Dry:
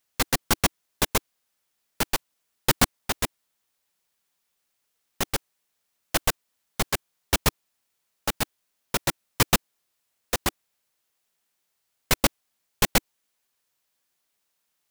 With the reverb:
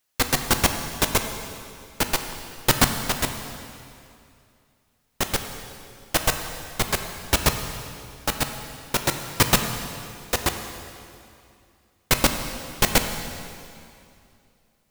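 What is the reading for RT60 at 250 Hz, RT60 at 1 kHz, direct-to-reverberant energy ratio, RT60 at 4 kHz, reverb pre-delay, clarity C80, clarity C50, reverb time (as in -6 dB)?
2.7 s, 2.5 s, 5.5 dB, 2.3 s, 3 ms, 8.0 dB, 7.0 dB, 2.5 s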